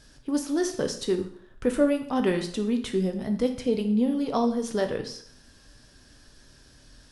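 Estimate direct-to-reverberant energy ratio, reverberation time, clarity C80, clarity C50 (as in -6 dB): 5.0 dB, 0.55 s, 13.5 dB, 10.0 dB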